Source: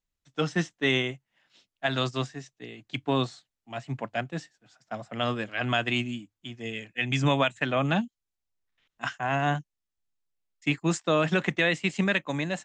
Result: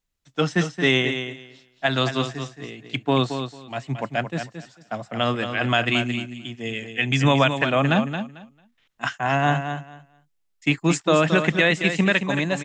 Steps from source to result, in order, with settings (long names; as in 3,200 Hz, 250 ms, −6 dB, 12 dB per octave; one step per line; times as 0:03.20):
repeating echo 223 ms, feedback 18%, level −8.5 dB
level +5.5 dB